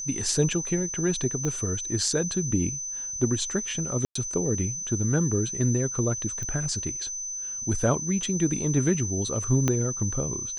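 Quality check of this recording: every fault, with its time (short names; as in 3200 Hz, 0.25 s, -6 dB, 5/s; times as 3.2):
tone 6100 Hz -31 dBFS
1.45 pop -17 dBFS
4.05–4.15 gap 0.104 s
6.43 pop -21 dBFS
9.68 pop -10 dBFS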